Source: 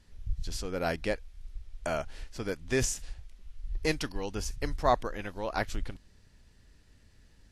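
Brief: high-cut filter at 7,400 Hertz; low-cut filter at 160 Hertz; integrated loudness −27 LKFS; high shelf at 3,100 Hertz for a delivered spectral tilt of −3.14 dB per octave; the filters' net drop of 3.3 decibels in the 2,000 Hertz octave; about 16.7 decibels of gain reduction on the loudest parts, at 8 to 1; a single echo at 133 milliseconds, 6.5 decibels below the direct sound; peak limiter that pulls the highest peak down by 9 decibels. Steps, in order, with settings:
high-pass filter 160 Hz
low-pass filter 7,400 Hz
parametric band 2,000 Hz −6 dB
high-shelf EQ 3,100 Hz +5.5 dB
downward compressor 8 to 1, threshold −37 dBFS
brickwall limiter −33 dBFS
single-tap delay 133 ms −6.5 dB
level +18.5 dB

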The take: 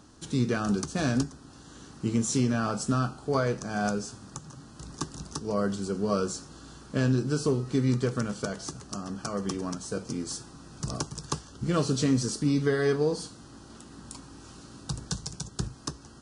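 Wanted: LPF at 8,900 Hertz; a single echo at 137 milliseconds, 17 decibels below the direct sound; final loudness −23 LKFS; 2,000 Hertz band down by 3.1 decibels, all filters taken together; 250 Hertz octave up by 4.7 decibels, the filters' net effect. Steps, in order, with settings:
low-pass filter 8,900 Hz
parametric band 250 Hz +5.5 dB
parametric band 2,000 Hz −4.5 dB
single-tap delay 137 ms −17 dB
level +4 dB

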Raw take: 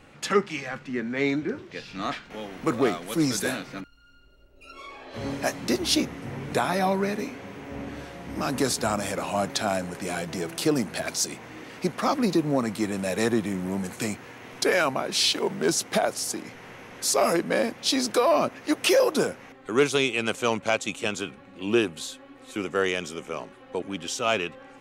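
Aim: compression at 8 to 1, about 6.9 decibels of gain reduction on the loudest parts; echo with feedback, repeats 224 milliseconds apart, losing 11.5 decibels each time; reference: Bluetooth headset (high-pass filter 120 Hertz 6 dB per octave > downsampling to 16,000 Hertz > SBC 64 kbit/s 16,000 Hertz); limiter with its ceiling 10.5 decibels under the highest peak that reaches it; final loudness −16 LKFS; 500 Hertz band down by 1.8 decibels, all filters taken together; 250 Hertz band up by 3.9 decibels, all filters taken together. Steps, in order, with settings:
parametric band 250 Hz +7.5 dB
parametric band 500 Hz −4.5 dB
downward compressor 8 to 1, threshold −22 dBFS
brickwall limiter −21.5 dBFS
high-pass filter 120 Hz 6 dB per octave
repeating echo 224 ms, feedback 27%, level −11.5 dB
downsampling to 16,000 Hz
level +16 dB
SBC 64 kbit/s 16,000 Hz

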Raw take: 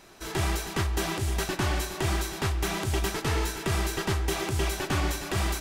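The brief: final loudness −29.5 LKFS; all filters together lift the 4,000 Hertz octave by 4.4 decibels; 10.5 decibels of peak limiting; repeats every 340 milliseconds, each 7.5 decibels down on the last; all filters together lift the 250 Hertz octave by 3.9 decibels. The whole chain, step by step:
parametric band 250 Hz +6 dB
parametric band 4,000 Hz +5.5 dB
brickwall limiter −23 dBFS
repeating echo 340 ms, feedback 42%, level −7.5 dB
level +2 dB

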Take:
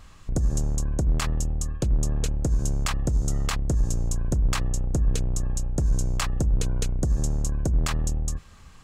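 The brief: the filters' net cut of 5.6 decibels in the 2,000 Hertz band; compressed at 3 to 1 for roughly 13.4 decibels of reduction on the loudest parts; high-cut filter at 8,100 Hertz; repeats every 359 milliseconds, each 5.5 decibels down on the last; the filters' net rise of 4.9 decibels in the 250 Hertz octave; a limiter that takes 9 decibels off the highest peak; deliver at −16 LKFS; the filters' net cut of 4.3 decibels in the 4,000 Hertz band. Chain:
low-pass filter 8,100 Hz
parametric band 250 Hz +7 dB
parametric band 2,000 Hz −6.5 dB
parametric band 4,000 Hz −3.5 dB
downward compressor 3 to 1, threshold −36 dBFS
brickwall limiter −31 dBFS
repeating echo 359 ms, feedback 53%, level −5.5 dB
level +24 dB

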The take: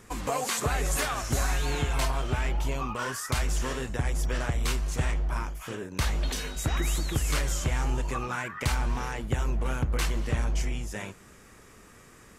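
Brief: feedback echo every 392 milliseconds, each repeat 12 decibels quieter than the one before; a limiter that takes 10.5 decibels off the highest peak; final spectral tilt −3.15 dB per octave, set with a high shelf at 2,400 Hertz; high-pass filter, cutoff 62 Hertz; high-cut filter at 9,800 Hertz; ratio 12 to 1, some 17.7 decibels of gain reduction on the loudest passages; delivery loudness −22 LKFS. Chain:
high-pass filter 62 Hz
low-pass filter 9,800 Hz
high-shelf EQ 2,400 Hz +5 dB
downward compressor 12 to 1, threshold −41 dBFS
brickwall limiter −34.5 dBFS
repeating echo 392 ms, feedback 25%, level −12 dB
level +23.5 dB

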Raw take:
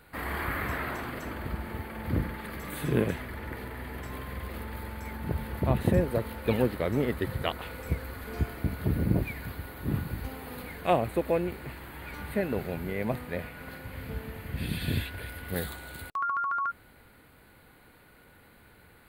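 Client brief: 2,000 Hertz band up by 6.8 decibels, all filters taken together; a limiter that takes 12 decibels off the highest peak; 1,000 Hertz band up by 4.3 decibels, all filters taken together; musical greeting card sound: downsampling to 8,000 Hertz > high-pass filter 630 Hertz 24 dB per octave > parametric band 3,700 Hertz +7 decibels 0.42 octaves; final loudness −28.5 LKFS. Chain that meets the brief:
parametric band 1,000 Hz +3.5 dB
parametric band 2,000 Hz +7 dB
brickwall limiter −19 dBFS
downsampling to 8,000 Hz
high-pass filter 630 Hz 24 dB per octave
parametric band 3,700 Hz +7 dB 0.42 octaves
level +6 dB

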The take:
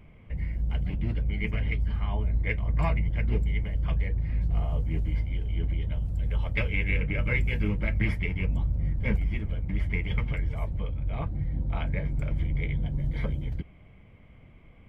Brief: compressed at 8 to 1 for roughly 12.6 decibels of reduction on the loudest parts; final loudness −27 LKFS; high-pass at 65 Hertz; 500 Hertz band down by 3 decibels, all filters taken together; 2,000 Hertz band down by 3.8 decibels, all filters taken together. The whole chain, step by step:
high-pass filter 65 Hz
parametric band 500 Hz −3.5 dB
parametric band 2,000 Hz −4 dB
downward compressor 8 to 1, threshold −37 dBFS
level +15.5 dB

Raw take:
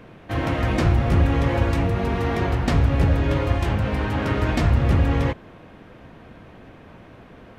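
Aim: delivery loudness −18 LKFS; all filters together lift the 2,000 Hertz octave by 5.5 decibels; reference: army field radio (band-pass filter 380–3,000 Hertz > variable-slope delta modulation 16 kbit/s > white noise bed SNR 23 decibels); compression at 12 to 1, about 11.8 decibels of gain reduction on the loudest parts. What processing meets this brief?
parametric band 2,000 Hz +7.5 dB
downward compressor 12 to 1, threshold −25 dBFS
band-pass filter 380–3,000 Hz
variable-slope delta modulation 16 kbit/s
white noise bed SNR 23 dB
level +16.5 dB

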